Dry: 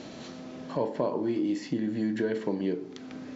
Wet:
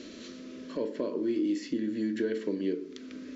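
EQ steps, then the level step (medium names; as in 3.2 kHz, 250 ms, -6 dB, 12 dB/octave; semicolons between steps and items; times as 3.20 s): static phaser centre 330 Hz, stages 4; 0.0 dB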